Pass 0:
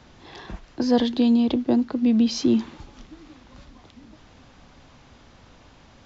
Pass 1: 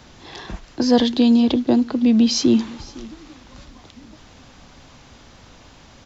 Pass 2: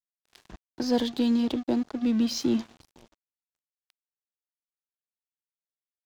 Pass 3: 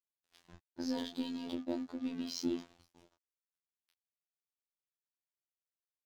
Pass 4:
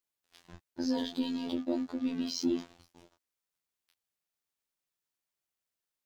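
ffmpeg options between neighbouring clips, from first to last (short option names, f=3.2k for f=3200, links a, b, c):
-af "highshelf=f=5k:g=9,aecho=1:1:508:0.0891,volume=4dB"
-af "aeval=exprs='sgn(val(0))*max(abs(val(0))-0.0266,0)':c=same,volume=-8.5dB"
-filter_complex "[0:a]asplit=2[a][b];[b]adelay=23,volume=-5.5dB[c];[a][c]amix=inputs=2:normalize=0,afftfilt=real='hypot(re,im)*cos(PI*b)':imag='0':win_size=2048:overlap=0.75,volume=-7.5dB"
-af "asoftclip=type=tanh:threshold=-24dB,volume=6dB"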